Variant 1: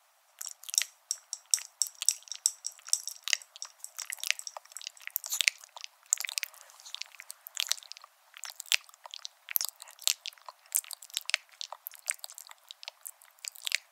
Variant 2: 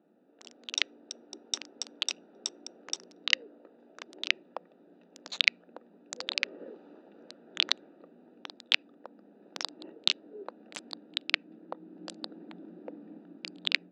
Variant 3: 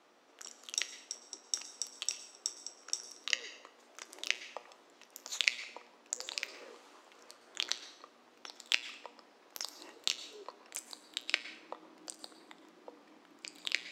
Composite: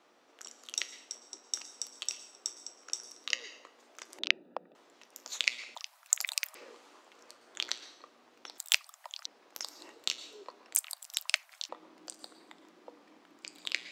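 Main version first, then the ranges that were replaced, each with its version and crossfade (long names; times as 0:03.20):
3
0:04.19–0:04.75: punch in from 2
0:05.75–0:06.55: punch in from 1
0:08.58–0:09.26: punch in from 1
0:10.75–0:11.69: punch in from 1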